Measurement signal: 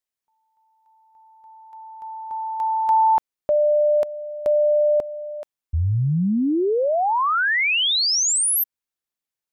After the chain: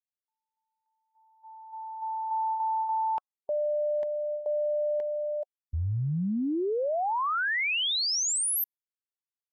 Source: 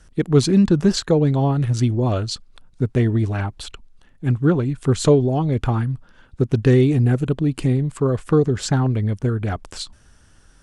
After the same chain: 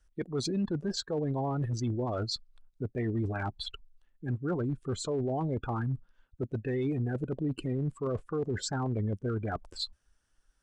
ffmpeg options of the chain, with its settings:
ffmpeg -i in.wav -af "afftdn=noise_reduction=23:noise_floor=-30,lowshelf=frequency=280:gain=-11,areverse,acompressor=threshold=-28dB:ratio=16:attack=0.11:release=160:knee=1:detection=rms,areverse,volume=2.5dB" out.wav

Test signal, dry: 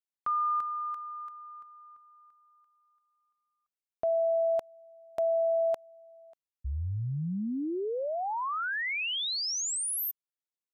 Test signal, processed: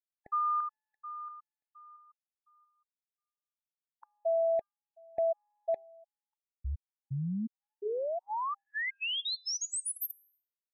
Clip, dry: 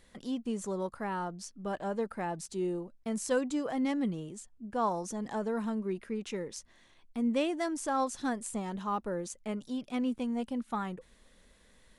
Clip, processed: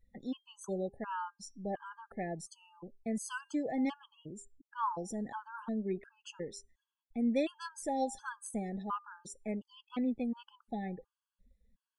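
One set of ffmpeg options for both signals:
ffmpeg -i in.wav -af "bandreject=frequency=400.7:width_type=h:width=4,bandreject=frequency=801.4:width_type=h:width=4,bandreject=frequency=1202.1:width_type=h:width=4,bandreject=frequency=1602.8:width_type=h:width=4,bandreject=frequency=2003.5:width_type=h:width=4,bandreject=frequency=2404.2:width_type=h:width=4,bandreject=frequency=2804.9:width_type=h:width=4,bandreject=frequency=3205.6:width_type=h:width=4,bandreject=frequency=3606.3:width_type=h:width=4,bandreject=frequency=4007:width_type=h:width=4,bandreject=frequency=4407.7:width_type=h:width=4,bandreject=frequency=4808.4:width_type=h:width=4,bandreject=frequency=5209.1:width_type=h:width=4,bandreject=frequency=5609.8:width_type=h:width=4,bandreject=frequency=6010.5:width_type=h:width=4,bandreject=frequency=6411.2:width_type=h:width=4,bandreject=frequency=6811.9:width_type=h:width=4,bandreject=frequency=7212.6:width_type=h:width=4,bandreject=frequency=7613.3:width_type=h:width=4,bandreject=frequency=8014:width_type=h:width=4,bandreject=frequency=8414.7:width_type=h:width=4,bandreject=frequency=8815.4:width_type=h:width=4,bandreject=frequency=9216.1:width_type=h:width=4,bandreject=frequency=9616.8:width_type=h:width=4,bandreject=frequency=10017.5:width_type=h:width=4,bandreject=frequency=10418.2:width_type=h:width=4,bandreject=frequency=10818.9:width_type=h:width=4,bandreject=frequency=11219.6:width_type=h:width=4,bandreject=frequency=11620.3:width_type=h:width=4,bandreject=frequency=12021:width_type=h:width=4,bandreject=frequency=12421.7:width_type=h:width=4,bandreject=frequency=12822.4:width_type=h:width=4,bandreject=frequency=13223.1:width_type=h:width=4,bandreject=frequency=13623.8:width_type=h:width=4,bandreject=frequency=14024.5:width_type=h:width=4,bandreject=frequency=14425.2:width_type=h:width=4,afftdn=noise_reduction=25:noise_floor=-53,afftfilt=real='re*gt(sin(2*PI*1.4*pts/sr)*(1-2*mod(floor(b*sr/1024/860),2)),0)':imag='im*gt(sin(2*PI*1.4*pts/sr)*(1-2*mod(floor(b*sr/1024/860),2)),0)':win_size=1024:overlap=0.75,volume=-1dB" out.wav

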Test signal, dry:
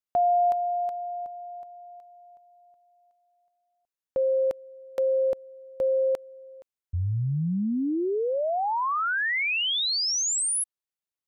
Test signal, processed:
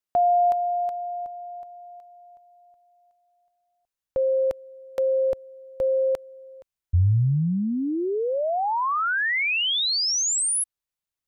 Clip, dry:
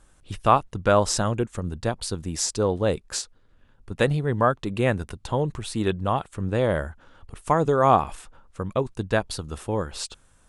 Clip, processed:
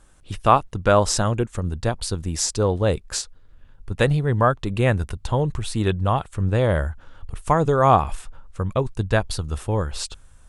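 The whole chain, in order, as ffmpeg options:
ffmpeg -i in.wav -af "asubboost=boost=2.5:cutoff=130,volume=2.5dB" out.wav

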